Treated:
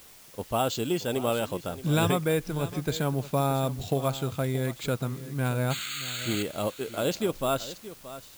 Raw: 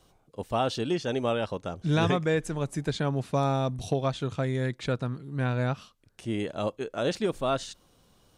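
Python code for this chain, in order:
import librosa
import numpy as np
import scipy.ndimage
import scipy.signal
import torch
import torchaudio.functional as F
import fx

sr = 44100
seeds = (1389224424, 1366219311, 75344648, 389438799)

p1 = fx.spec_paint(x, sr, seeds[0], shape='noise', start_s=5.7, length_s=0.73, low_hz=1200.0, high_hz=4600.0, level_db=-37.0)
p2 = fx.high_shelf(p1, sr, hz=6100.0, db=11.0)
p3 = p2 + fx.echo_single(p2, sr, ms=625, db=-15.0, dry=0)
p4 = np.repeat(scipy.signal.resample_poly(p3, 1, 4), 4)[:len(p3)]
p5 = fx.notch(p4, sr, hz=1800.0, q=8.6)
y = fx.dmg_noise_colour(p5, sr, seeds[1], colour='white', level_db=-52.0)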